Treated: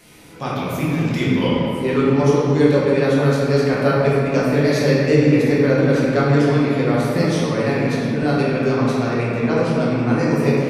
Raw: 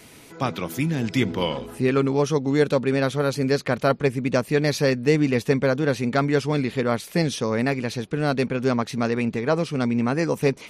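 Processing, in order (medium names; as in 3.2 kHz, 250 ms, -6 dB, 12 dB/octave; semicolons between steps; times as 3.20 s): simulated room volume 120 m³, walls hard, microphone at 0.9 m; trim -4 dB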